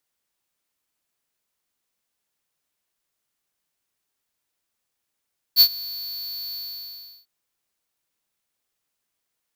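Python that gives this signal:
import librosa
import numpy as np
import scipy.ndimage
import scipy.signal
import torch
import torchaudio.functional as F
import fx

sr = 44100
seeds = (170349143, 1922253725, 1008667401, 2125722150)

y = fx.adsr_tone(sr, wave='square', hz=4450.0, attack_ms=48.0, decay_ms=70.0, sustain_db=-22.0, held_s=0.98, release_ms=719.0, level_db=-10.5)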